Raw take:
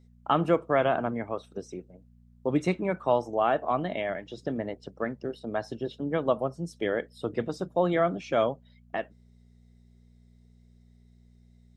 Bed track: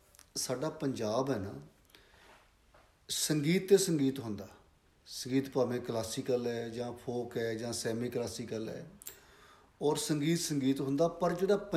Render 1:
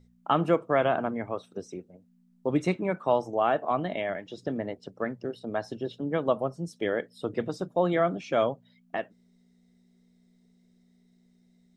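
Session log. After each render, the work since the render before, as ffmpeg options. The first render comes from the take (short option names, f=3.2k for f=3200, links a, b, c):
-af "bandreject=f=60:t=h:w=4,bandreject=f=120:t=h:w=4"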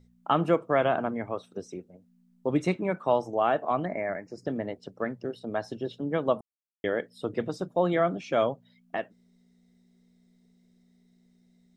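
-filter_complex "[0:a]asettb=1/sr,asplit=3[a][b][c];[a]atrim=end=3.854[d];[b]atrim=start=3.85:end=4.46,asetpts=PTS-STARTPTS,afade=t=in:d=0.004:c=qsin,afade=t=out:st=0.606:d=0.004:c=qsin,asuperstop=centerf=3300:order=8:qfactor=1.4[e];[c]atrim=start=4.456[f];[d][e]acrossfade=d=0.004:c1=hsin:c2=qsin[g];[g][f]acrossfade=d=0.004:c1=qsin:c2=hsin,asplit=3[h][i][j];[h]atrim=end=6.41,asetpts=PTS-STARTPTS,afade=t=out:st=6.406:d=0.004:c=hsin[k];[i]atrim=start=6.41:end=6.84,asetpts=PTS-STARTPTS,volume=0[l];[j]atrim=start=6.84,asetpts=PTS-STARTPTS,afade=t=in:d=0.004:c=hsin[m];[k][l][m]concat=n=3:v=0:a=1"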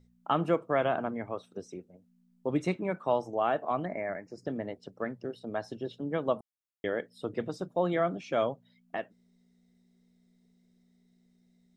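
-af "volume=-3.5dB"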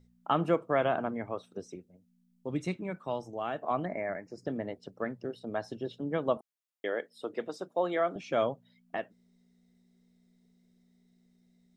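-filter_complex "[0:a]asettb=1/sr,asplit=3[a][b][c];[a]atrim=end=1.754[d];[b]atrim=start=1.75:end=3.63,asetpts=PTS-STARTPTS,afade=t=in:d=0.004:c=qsin,afade=t=out:st=1.876:d=0.004:c=qsin,equalizer=f=740:t=o:w=3:g=-7.5[e];[c]atrim=start=3.626[f];[d][e]acrossfade=d=0.004:c1=hsin:c2=qsin[g];[g][f]acrossfade=d=0.004:c1=qsin:c2=hsin,asettb=1/sr,asplit=3[h][i][j];[h]atrim=end=6.374[k];[i]atrim=start=6.37:end=8.16,asetpts=PTS-STARTPTS,afade=t=in:d=0.004:c=qsin,afade=t=out:st=1.786:d=0.004:c=qsin,highpass=340[l];[j]atrim=start=8.156[m];[k][l]acrossfade=d=0.004:c1=hsin:c2=qsin[n];[n][m]acrossfade=d=0.004:c1=qsin:c2=hsin"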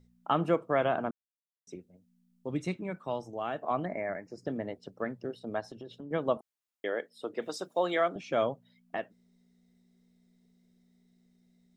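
-filter_complex "[0:a]asettb=1/sr,asplit=3[a][b][c];[a]atrim=end=5.604[d];[b]atrim=start=5.6:end=6.11,asetpts=PTS-STARTPTS,afade=t=in:d=0.004:c=qsin,afade=t=out:st=0.506:d=0.004:c=qsin,acompressor=threshold=-40dB:ratio=6:attack=3.2:release=140:knee=1:detection=peak[e];[c]atrim=start=6.106[f];[d][e]acrossfade=d=0.004:c1=hsin:c2=qsin[g];[g][f]acrossfade=d=0.004:c1=qsin:c2=hsin,asettb=1/sr,asplit=3[h][i][j];[h]atrim=end=7.424[k];[i]atrim=start=7.42:end=8.08,asetpts=PTS-STARTPTS,afade=t=in:d=0.004:c=qsin,afade=t=out:st=0.656:d=0.004:c=qsin,highshelf=f=2.3k:g=11[l];[j]atrim=start=8.076[m];[k][l]acrossfade=d=0.004:c1=hsin:c2=qsin[n];[n][m]acrossfade=d=0.004:c1=qsin:c2=hsin,asplit=3[o][p][q];[o]atrim=end=1.11,asetpts=PTS-STARTPTS,afade=t=out:st=1.106:d=0.004:c=hsin[r];[p]atrim=start=1.11:end=1.67,asetpts=PTS-STARTPTS,volume=0[s];[q]atrim=start=1.67,asetpts=PTS-STARTPTS,afade=t=in:d=0.004:c=hsin[t];[r][s][t]concat=n=3:v=0:a=1"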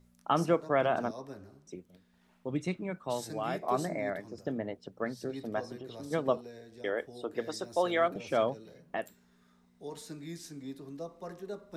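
-filter_complex "[1:a]volume=-12dB[a];[0:a][a]amix=inputs=2:normalize=0"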